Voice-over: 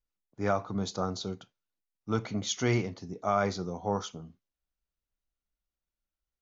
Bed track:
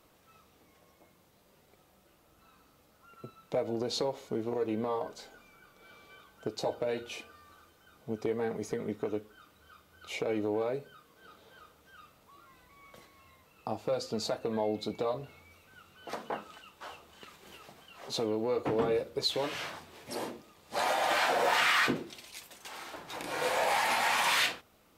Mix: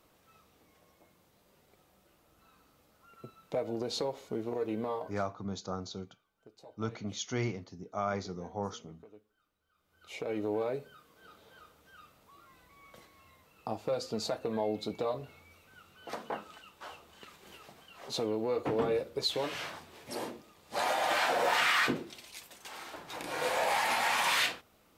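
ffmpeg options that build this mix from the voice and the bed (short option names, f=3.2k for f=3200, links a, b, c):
-filter_complex "[0:a]adelay=4700,volume=-6dB[a];[1:a]volume=18dB,afade=t=out:st=4.9:d=0.42:silence=0.112202,afade=t=in:st=9.74:d=0.78:silence=0.1[b];[a][b]amix=inputs=2:normalize=0"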